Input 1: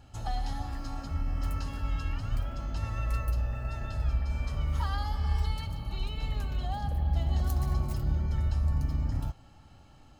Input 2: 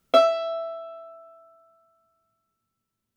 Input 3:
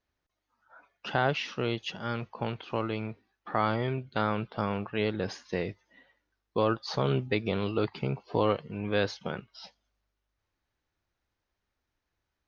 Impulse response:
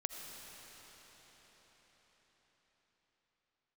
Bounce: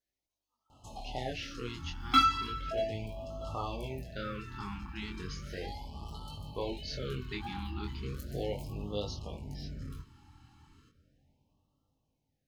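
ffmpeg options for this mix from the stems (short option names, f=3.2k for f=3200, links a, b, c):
-filter_complex "[0:a]asoftclip=type=tanh:threshold=-27dB,lowshelf=f=81:g=-11.5,adelay=700,volume=-2.5dB,asplit=2[a][b];[b]volume=-9dB[c];[1:a]adelay=2000,volume=3dB,asplit=2[d][e];[e]volume=-21dB[f];[2:a]bass=f=250:g=-3,treble=f=4k:g=9,volume=-7dB,asplit=2[g][h];[h]volume=-22dB[i];[3:a]atrim=start_sample=2205[j];[c][i]amix=inputs=2:normalize=0[k];[k][j]afir=irnorm=-1:irlink=0[l];[f]aecho=0:1:637|1274|1911|2548|3185:1|0.33|0.109|0.0359|0.0119[m];[a][d][g][l][m]amix=inputs=5:normalize=0,flanger=delay=19:depth=5.8:speed=0.33,afftfilt=real='re*(1-between(b*sr/1024,520*pow(1900/520,0.5+0.5*sin(2*PI*0.36*pts/sr))/1.41,520*pow(1900/520,0.5+0.5*sin(2*PI*0.36*pts/sr))*1.41))':imag='im*(1-between(b*sr/1024,520*pow(1900/520,0.5+0.5*sin(2*PI*0.36*pts/sr))/1.41,520*pow(1900/520,0.5+0.5*sin(2*PI*0.36*pts/sr))*1.41))':win_size=1024:overlap=0.75"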